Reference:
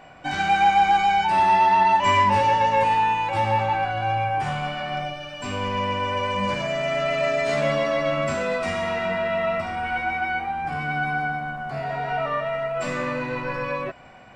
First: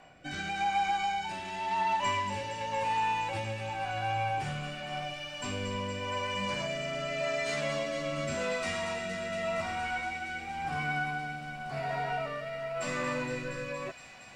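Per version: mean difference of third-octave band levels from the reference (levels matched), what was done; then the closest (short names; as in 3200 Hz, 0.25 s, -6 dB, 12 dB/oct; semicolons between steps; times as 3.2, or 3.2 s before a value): 4.5 dB: high shelf 3900 Hz +8 dB; compressor, threshold -20 dBFS, peak gain reduction 7 dB; rotary speaker horn 0.9 Hz; thin delay 0.233 s, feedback 84%, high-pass 3200 Hz, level -7.5 dB; gain -5.5 dB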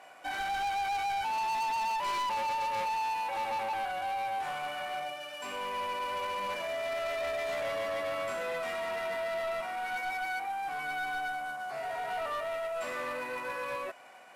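7.5 dB: CVSD 64 kbps; HPF 480 Hz 12 dB/oct; dynamic EQ 5300 Hz, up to -6 dB, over -42 dBFS, Q 0.89; soft clip -25.5 dBFS, distortion -8 dB; gain -4.5 dB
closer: first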